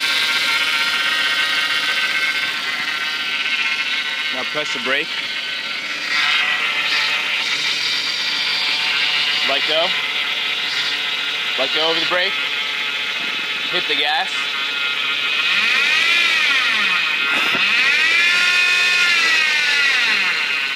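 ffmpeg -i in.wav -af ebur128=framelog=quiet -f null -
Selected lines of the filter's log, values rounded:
Integrated loudness:
  I:         -15.9 LUFS
  Threshold: -25.9 LUFS
Loudness range:
  LRA:         5.0 LU
  Threshold: -36.1 LUFS
  LRA low:   -18.3 LUFS
  LRA high:  -13.3 LUFS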